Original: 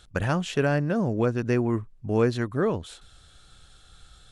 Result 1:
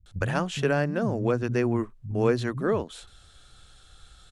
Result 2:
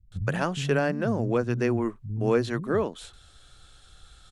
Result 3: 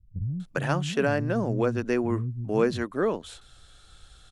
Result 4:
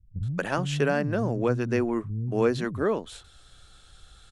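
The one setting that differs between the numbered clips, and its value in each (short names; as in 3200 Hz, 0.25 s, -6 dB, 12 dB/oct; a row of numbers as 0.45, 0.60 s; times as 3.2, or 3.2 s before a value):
bands offset in time, time: 60, 120, 400, 230 ms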